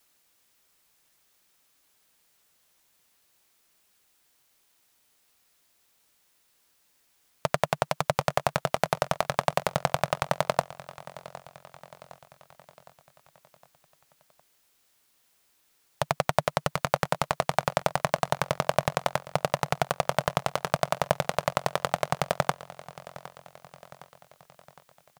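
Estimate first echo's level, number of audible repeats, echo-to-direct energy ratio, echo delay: -17.5 dB, 4, -16.0 dB, 761 ms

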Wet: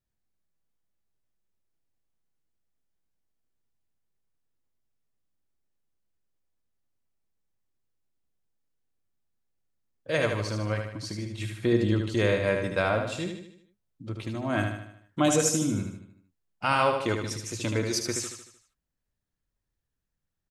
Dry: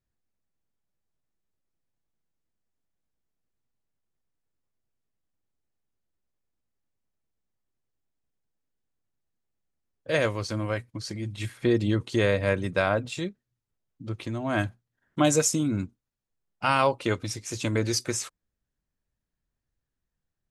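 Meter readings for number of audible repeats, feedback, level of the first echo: 5, 49%, -5.5 dB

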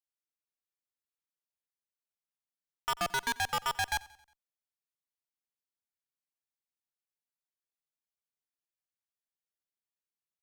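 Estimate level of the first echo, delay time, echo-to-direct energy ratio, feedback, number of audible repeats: -21.5 dB, 90 ms, -20.5 dB, 50%, 3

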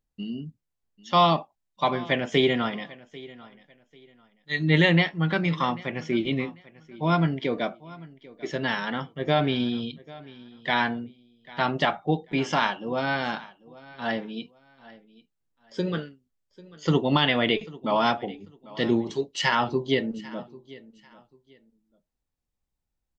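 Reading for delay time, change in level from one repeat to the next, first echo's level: 793 ms, -11.5 dB, -20.5 dB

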